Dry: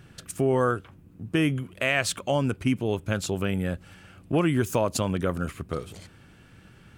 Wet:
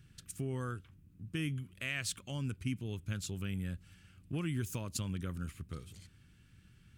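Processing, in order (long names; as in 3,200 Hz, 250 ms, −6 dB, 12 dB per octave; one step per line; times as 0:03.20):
guitar amp tone stack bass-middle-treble 6-0-2
level +6 dB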